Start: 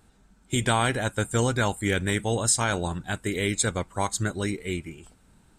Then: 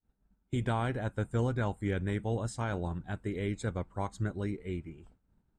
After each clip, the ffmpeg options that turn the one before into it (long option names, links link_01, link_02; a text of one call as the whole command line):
ffmpeg -i in.wav -af "lowpass=frequency=1000:poles=1,agate=range=-33dB:threshold=-50dB:ratio=3:detection=peak,lowshelf=frequency=150:gain=4.5,volume=-7dB" out.wav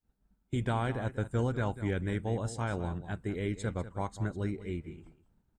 ffmpeg -i in.wav -af "aecho=1:1:195:0.211" out.wav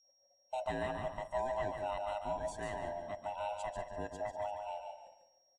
ffmpeg -i in.wav -af "afftfilt=real='real(if(lt(b,1008),b+24*(1-2*mod(floor(b/24),2)),b),0)':imag='imag(if(lt(b,1008),b+24*(1-2*mod(floor(b/24),2)),b),0)':win_size=2048:overlap=0.75,aeval=exprs='val(0)+0.000891*sin(2*PI*5600*n/s)':channel_layout=same,aecho=1:1:144|288|432:0.501|0.105|0.0221,volume=-7dB" out.wav